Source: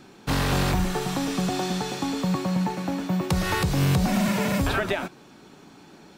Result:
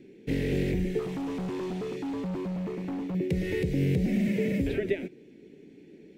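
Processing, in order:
drawn EQ curve 110 Hz 0 dB, 450 Hz +10 dB, 710 Hz −13 dB, 1,200 Hz −29 dB, 2,000 Hz +3 dB, 4,300 Hz −11 dB
0:00.99–0:03.15: hard clipping −23.5 dBFS, distortion −12 dB
level −7 dB

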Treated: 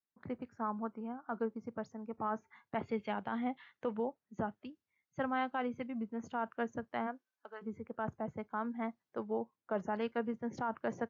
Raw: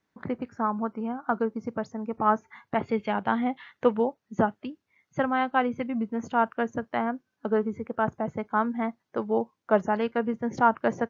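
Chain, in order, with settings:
0:07.06–0:07.61: high-pass filter 290 Hz → 1,100 Hz 12 dB per octave
brickwall limiter −16.5 dBFS, peak gain reduction 9 dB
multiband upward and downward expander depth 40%
level −9 dB

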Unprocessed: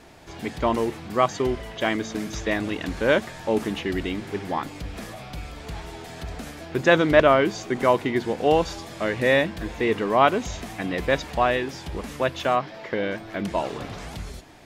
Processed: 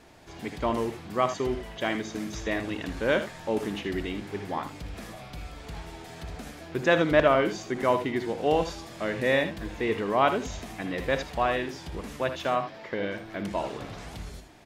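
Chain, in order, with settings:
multi-tap delay 60/79 ms −13/−11.5 dB
level −5 dB

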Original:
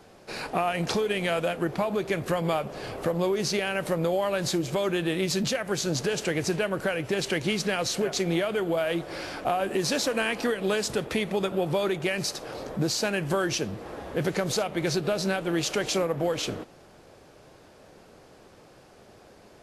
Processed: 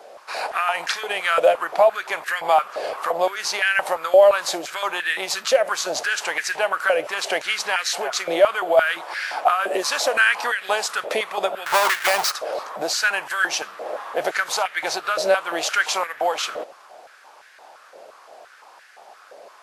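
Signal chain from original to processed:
0:11.66–0:12.32: each half-wave held at its own peak
high-pass on a step sequencer 5.8 Hz 590–1,700 Hz
level +4.5 dB

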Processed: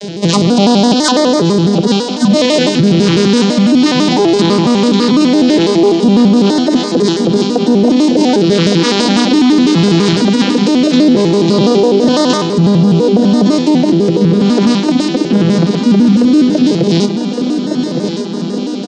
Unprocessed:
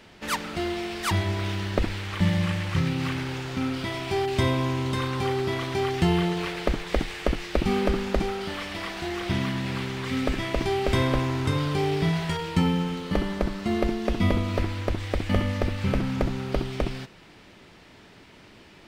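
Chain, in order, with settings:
vocoder with an arpeggio as carrier minor triad, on F#3, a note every 464 ms
reversed playback
downward compressor 10 to 1, threshold −34 dBFS, peak gain reduction 19 dB
reversed playback
parametric band 400 Hz +7 dB 1.4 octaves
auto-filter notch sine 0.18 Hz 460–2,500 Hz
high shelf with overshoot 3,100 Hz +11.5 dB, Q 1.5
on a send: repeating echo 1,160 ms, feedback 58%, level −10 dB
on the sum: boost into a limiter +29 dB
pitch modulation by a square or saw wave square 6 Hz, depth 160 cents
level −1 dB

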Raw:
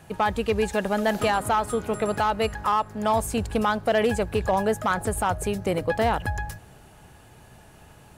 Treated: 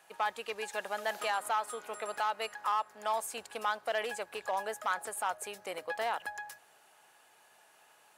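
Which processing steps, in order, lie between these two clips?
high-pass filter 740 Hz 12 dB per octave
level −7 dB

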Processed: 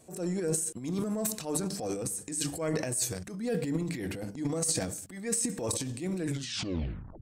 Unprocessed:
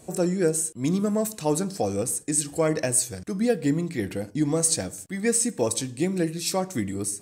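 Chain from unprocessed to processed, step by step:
turntable brake at the end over 1.02 s
mains-hum notches 50/100/150/200 Hz
transient designer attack −7 dB, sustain +11 dB
level −8 dB

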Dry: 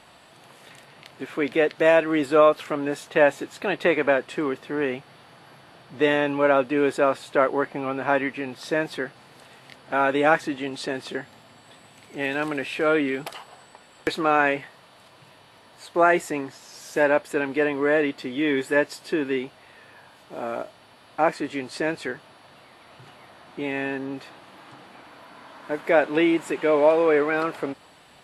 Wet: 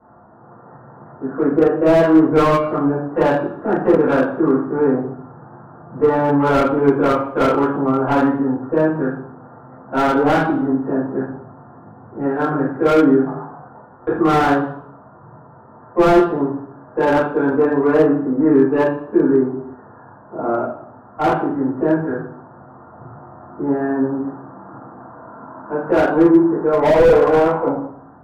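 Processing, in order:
adaptive Wiener filter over 15 samples
high-pass filter 56 Hz 12 dB per octave
gain on a spectral selection 0:26.80–0:27.76, 460–1,100 Hz +9 dB
Butterworth low-pass 1,600 Hz 72 dB per octave
harmonic and percussive parts rebalanced percussive −3 dB
dynamic equaliser 620 Hz, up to −5 dB, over −31 dBFS, Q 3.1
automatic gain control gain up to 3.5 dB
soft clipping −11 dBFS, distortion −17 dB
convolution reverb RT60 0.65 s, pre-delay 3 ms, DRR −11 dB
slew-rate limiting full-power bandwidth 400 Hz
level −6 dB

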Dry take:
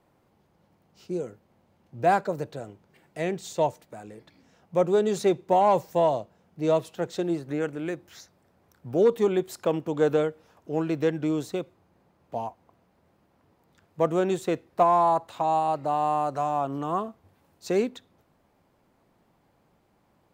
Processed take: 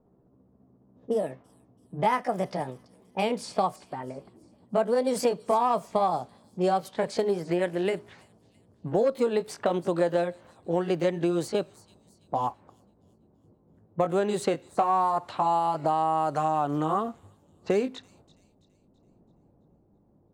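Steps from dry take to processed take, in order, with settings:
pitch glide at a constant tempo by +4.5 semitones ending unshifted
downward compressor 4 to 1, threshold −30 dBFS, peak gain reduction 11.5 dB
low-pass that shuts in the quiet parts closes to 390 Hz, open at −32 dBFS
delay with a high-pass on its return 332 ms, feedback 44%, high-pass 5,000 Hz, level −14 dB
level +7.5 dB

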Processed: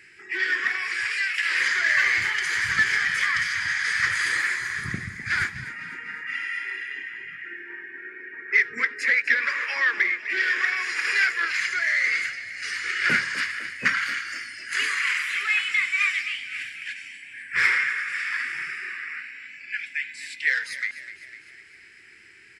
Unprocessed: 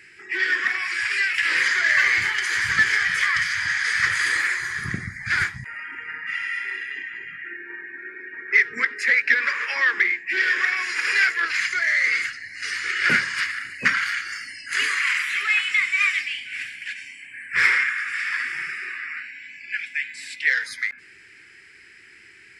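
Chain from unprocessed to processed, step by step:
0:01.10–0:01.59: high-pass filter 1,300 Hz → 630 Hz 6 dB per octave
on a send: echo with shifted repeats 252 ms, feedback 57%, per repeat +41 Hz, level −14 dB
on the sum: level −2.5 dB

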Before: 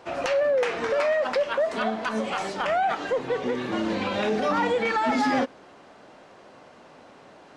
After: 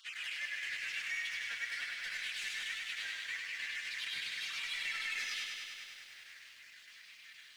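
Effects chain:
time-frequency cells dropped at random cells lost 37%
elliptic high-pass filter 1,800 Hz, stop band 60 dB
high-shelf EQ 5,000 Hz −8.5 dB
in parallel at −2.5 dB: downward compressor 6 to 1, threshold −54 dBFS, peak gain reduction 23 dB
on the sum: brickwall limiter −32.5 dBFS, peak gain reduction 11 dB
soft clipping −39 dBFS, distortion −14 dB
pitch-shifted copies added +3 semitones −2 dB
flanger 0.43 Hz, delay 4.4 ms, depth 6 ms, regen +27%
square-wave tremolo 6.4 Hz, depth 65%, duty 90%
on a send: delay that swaps between a low-pass and a high-pass 130 ms, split 2,400 Hz, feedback 56%, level −10.5 dB
on the sum: feedback echo at a low word length 100 ms, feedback 80%, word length 12 bits, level −4.5 dB
level +4.5 dB

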